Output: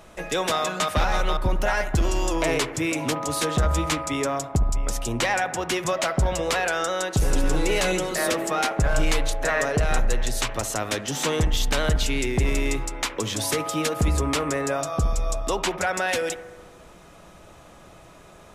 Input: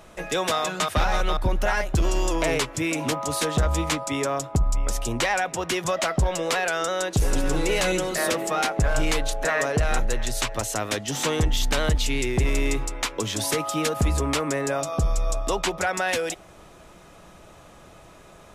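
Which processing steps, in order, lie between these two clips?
analogue delay 69 ms, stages 1024, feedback 68%, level -13.5 dB

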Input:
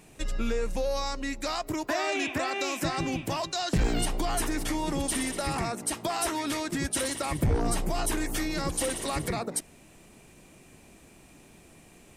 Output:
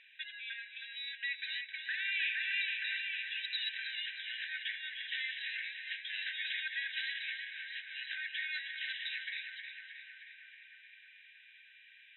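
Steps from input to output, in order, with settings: limiter -23.5 dBFS, peak gain reduction 6 dB; brick-wall FIR band-pass 1500–4000 Hz; on a send: darkening echo 0.314 s, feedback 80%, low-pass 2900 Hz, level -5 dB; on the sum: gain +2.5 dB

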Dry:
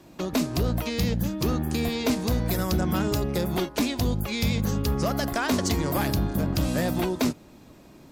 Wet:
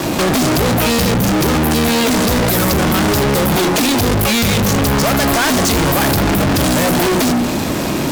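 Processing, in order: HPF 83 Hz 6 dB/oct; notches 60/120/180/240/300/360/420 Hz; fuzz box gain 52 dB, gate -58 dBFS

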